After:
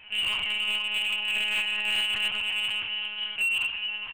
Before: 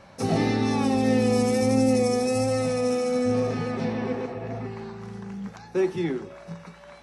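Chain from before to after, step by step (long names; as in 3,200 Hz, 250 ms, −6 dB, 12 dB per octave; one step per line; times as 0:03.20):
parametric band 230 Hz +7.5 dB 0.72 octaves
downward compressor 5 to 1, threshold −24 dBFS, peak gain reduction 11 dB
voice inversion scrambler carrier 3,100 Hz
tempo change 1.7×
feedback echo with a band-pass in the loop 470 ms, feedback 61%, band-pass 760 Hz, level −4.5 dB
convolution reverb RT60 1.0 s, pre-delay 3 ms, DRR −5.5 dB
one-pitch LPC vocoder at 8 kHz 210 Hz
slew-rate limiting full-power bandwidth 360 Hz
level −6 dB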